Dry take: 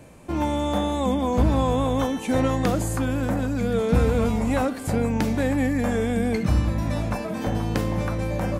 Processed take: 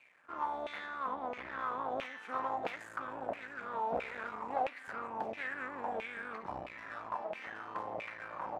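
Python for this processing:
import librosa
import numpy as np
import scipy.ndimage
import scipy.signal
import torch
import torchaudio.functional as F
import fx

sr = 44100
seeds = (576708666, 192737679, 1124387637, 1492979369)

y = fx.high_shelf(x, sr, hz=5800.0, db=-9.0, at=(0.86, 1.91))
y = np.maximum(y, 0.0)
y = fx.filter_lfo_bandpass(y, sr, shape='saw_down', hz=1.5, low_hz=640.0, high_hz=2500.0, q=5.6)
y = y * librosa.db_to_amplitude(4.0)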